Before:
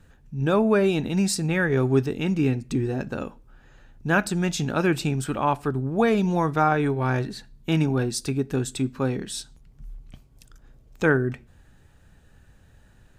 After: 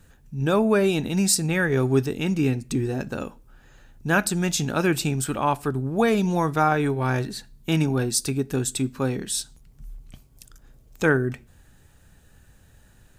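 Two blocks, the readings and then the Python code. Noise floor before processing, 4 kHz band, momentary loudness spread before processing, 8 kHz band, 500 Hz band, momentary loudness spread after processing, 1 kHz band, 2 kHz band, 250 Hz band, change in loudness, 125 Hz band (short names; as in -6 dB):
-55 dBFS, +3.5 dB, 11 LU, +7.0 dB, 0.0 dB, 9 LU, +0.5 dB, +1.0 dB, 0.0 dB, +0.5 dB, 0.0 dB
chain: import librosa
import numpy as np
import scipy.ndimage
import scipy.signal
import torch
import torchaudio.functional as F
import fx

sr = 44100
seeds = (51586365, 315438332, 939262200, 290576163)

y = fx.high_shelf(x, sr, hz=6400.0, db=12.0)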